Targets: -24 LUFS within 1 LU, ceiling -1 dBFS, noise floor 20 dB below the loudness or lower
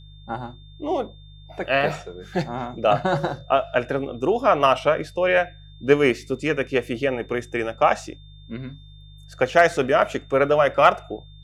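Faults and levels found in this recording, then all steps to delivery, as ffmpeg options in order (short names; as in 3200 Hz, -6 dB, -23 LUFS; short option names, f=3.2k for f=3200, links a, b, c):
hum 50 Hz; harmonics up to 150 Hz; hum level -41 dBFS; steady tone 3600 Hz; tone level -52 dBFS; loudness -21.5 LUFS; peak -2.5 dBFS; loudness target -24.0 LUFS
-> -af "bandreject=f=50:t=h:w=4,bandreject=f=100:t=h:w=4,bandreject=f=150:t=h:w=4"
-af "bandreject=f=3.6k:w=30"
-af "volume=-2.5dB"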